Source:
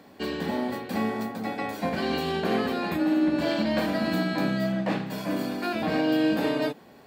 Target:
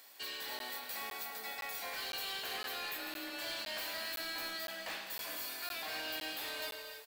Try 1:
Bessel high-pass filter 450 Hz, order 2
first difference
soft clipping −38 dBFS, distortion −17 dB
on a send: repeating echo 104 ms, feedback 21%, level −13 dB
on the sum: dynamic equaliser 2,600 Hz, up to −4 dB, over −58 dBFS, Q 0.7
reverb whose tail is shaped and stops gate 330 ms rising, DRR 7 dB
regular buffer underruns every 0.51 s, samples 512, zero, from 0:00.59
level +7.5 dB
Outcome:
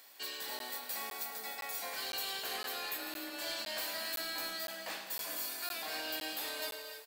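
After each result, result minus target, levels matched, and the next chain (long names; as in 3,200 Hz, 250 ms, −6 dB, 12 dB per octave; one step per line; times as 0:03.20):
soft clipping: distortion −6 dB; 8,000 Hz band +2.5 dB
Bessel high-pass filter 450 Hz, order 2
first difference
soft clipping −44 dBFS, distortion −11 dB
on a send: repeating echo 104 ms, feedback 21%, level −13 dB
on the sum: dynamic equaliser 2,600 Hz, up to −4 dB, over −58 dBFS, Q 0.7
reverb whose tail is shaped and stops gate 330 ms rising, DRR 7 dB
regular buffer underruns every 0.51 s, samples 512, zero, from 0:00.59
level +7.5 dB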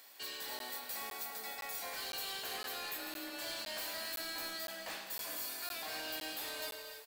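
8,000 Hz band +3.5 dB
Bessel high-pass filter 450 Hz, order 2
first difference
soft clipping −44 dBFS, distortion −11 dB
on a send: repeating echo 104 ms, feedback 21%, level −13 dB
on the sum: dynamic equaliser 8,300 Hz, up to −4 dB, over −58 dBFS, Q 0.7
reverb whose tail is shaped and stops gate 330 ms rising, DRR 7 dB
regular buffer underruns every 0.51 s, samples 512, zero, from 0:00.59
level +7.5 dB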